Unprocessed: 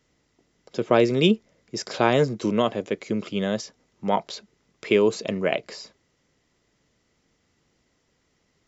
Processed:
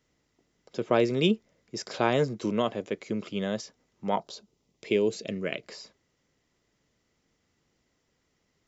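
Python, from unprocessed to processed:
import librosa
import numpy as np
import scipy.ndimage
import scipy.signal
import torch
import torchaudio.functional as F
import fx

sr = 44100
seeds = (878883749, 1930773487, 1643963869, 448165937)

y = fx.peak_eq(x, sr, hz=fx.line((4.17, 2300.0), (5.61, 750.0)), db=-14.0, octaves=0.77, at=(4.17, 5.61), fade=0.02)
y = y * librosa.db_to_amplitude(-5.0)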